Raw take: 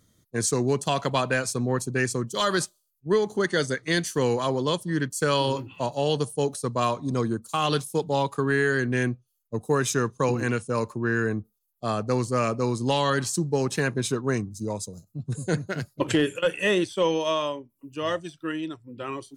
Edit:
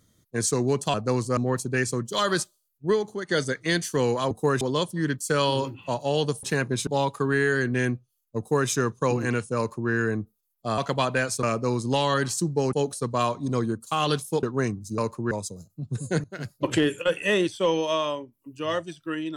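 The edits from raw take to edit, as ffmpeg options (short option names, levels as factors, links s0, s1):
-filter_complex "[0:a]asplit=15[s0][s1][s2][s3][s4][s5][s6][s7][s8][s9][s10][s11][s12][s13][s14];[s0]atrim=end=0.942[s15];[s1]atrim=start=11.958:end=12.392[s16];[s2]atrim=start=1.588:end=3.51,asetpts=PTS-STARTPTS,afade=t=out:st=1.522:d=0.4:silence=0.211349[s17];[s3]atrim=start=3.51:end=4.532,asetpts=PTS-STARTPTS,afade=t=in:d=0.004:c=hsin:silence=0.211349[s18];[s4]atrim=start=9.568:end=9.872[s19];[s5]atrim=start=4.528:end=6.352[s20];[s6]atrim=start=13.688:end=14.132[s21];[s7]atrim=start=8.048:end=11.962[s22];[s8]atrim=start=0.938:end=1.592[s23];[s9]atrim=start=12.388:end=13.692[s24];[s10]atrim=start=6.348:end=8.052[s25];[s11]atrim=start=14.128:end=14.682[s26];[s12]atrim=start=10.748:end=11.082[s27];[s13]atrim=start=14.678:end=15.61,asetpts=PTS-STARTPTS,afade=t=out:st=0.928:d=0.004:c=hsin:silence=0.133352[s28];[s14]atrim=start=15.61,asetpts=PTS-STARTPTS,afade=t=in:d=0.29:silence=0.133352[s29];[s15][s16]acrossfade=d=0.004:c1=hsin:c2=hsin[s30];[s17][s18]concat=n=2:v=0:a=1[s31];[s30][s31]acrossfade=d=0.004:c1=hsin:c2=hsin[s32];[s32][s19]acrossfade=d=0.004:c1=hsin:c2=hsin[s33];[s33][s20]acrossfade=d=0.004:c1=hsin:c2=hsin[s34];[s34][s21]acrossfade=d=0.004:c1=hsin:c2=hsin[s35];[s35][s22]acrossfade=d=0.004:c1=hsin:c2=hsin[s36];[s36][s23]acrossfade=d=0.004:c1=hsin:c2=hsin[s37];[s37][s24]acrossfade=d=0.004:c1=hsin:c2=hsin[s38];[s38][s25]acrossfade=d=0.004:c1=hsin:c2=hsin[s39];[s39][s26]acrossfade=d=0.004:c1=hsin:c2=hsin[s40];[s40][s27]acrossfade=d=0.004:c1=hsin:c2=hsin[s41];[s28][s29]concat=n=2:v=0:a=1[s42];[s41][s42]acrossfade=d=0.004:c1=hsin:c2=hsin"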